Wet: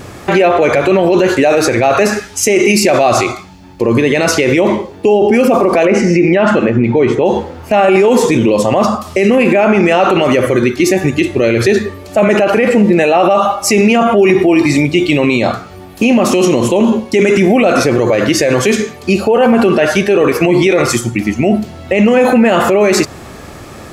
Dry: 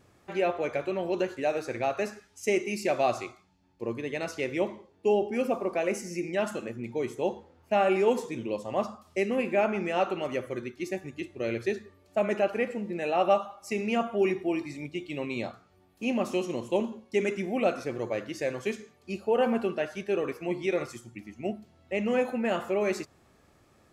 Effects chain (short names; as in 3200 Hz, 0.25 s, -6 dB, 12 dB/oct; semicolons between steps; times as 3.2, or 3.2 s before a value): 5.85–7.26 LPF 2800 Hz 12 dB/oct; maximiser +31.5 dB; gain -1 dB